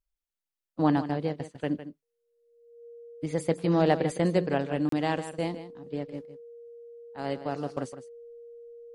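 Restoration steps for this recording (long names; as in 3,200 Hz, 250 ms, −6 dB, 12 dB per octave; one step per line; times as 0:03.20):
notch filter 470 Hz, Q 30
repair the gap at 0:04.89, 33 ms
echo removal 157 ms −12.5 dB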